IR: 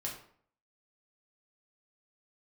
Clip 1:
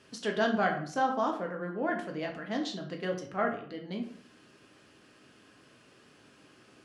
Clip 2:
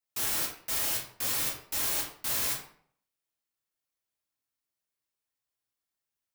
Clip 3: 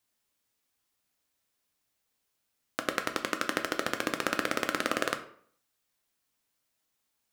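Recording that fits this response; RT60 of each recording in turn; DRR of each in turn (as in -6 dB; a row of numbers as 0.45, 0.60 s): 2; 0.55, 0.55, 0.55 s; 1.5, -3.0, 6.0 dB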